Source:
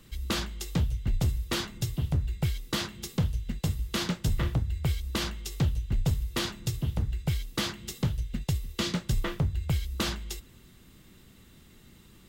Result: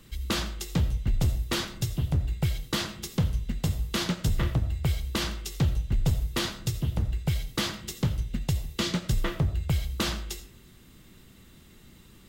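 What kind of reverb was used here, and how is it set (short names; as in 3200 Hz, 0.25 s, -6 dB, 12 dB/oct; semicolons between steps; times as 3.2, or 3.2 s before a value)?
digital reverb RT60 0.42 s, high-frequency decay 0.5×, pre-delay 45 ms, DRR 12.5 dB; gain +1.5 dB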